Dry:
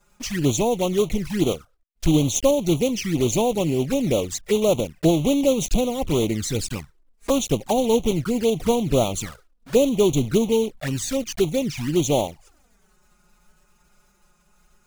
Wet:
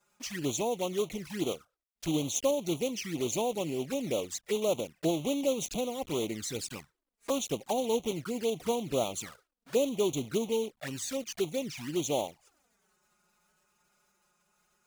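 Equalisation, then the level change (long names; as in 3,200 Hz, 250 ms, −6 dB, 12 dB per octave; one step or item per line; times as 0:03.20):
high-pass filter 330 Hz 6 dB per octave
−8.0 dB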